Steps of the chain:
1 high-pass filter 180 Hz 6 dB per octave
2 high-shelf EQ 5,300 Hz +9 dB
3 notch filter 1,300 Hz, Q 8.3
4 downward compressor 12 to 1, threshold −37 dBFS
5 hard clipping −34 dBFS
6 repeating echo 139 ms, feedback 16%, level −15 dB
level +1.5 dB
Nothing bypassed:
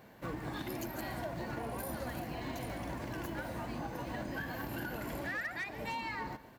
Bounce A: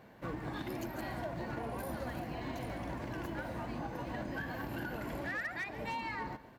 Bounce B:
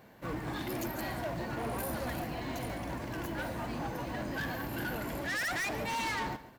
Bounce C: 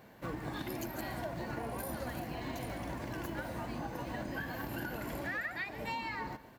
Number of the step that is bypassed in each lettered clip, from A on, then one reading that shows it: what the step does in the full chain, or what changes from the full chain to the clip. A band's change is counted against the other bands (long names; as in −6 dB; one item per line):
2, 8 kHz band −5.5 dB
4, average gain reduction 5.5 dB
5, distortion level −22 dB